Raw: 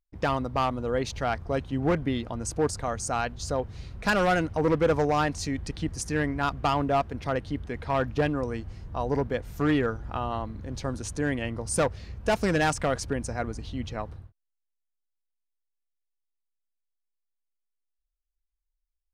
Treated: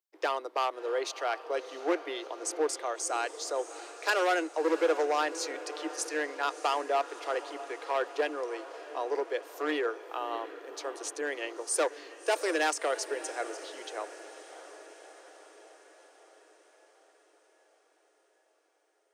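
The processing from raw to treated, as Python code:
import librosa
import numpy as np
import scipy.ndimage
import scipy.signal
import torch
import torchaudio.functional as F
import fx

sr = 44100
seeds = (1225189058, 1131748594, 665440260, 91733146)

p1 = scipy.signal.sosfilt(scipy.signal.butter(16, 320.0, 'highpass', fs=sr, output='sos'), x)
p2 = fx.peak_eq(p1, sr, hz=850.0, db=-3.5, octaves=2.8)
y = p2 + fx.echo_diffused(p2, sr, ms=667, feedback_pct=62, wet_db=-14.0, dry=0)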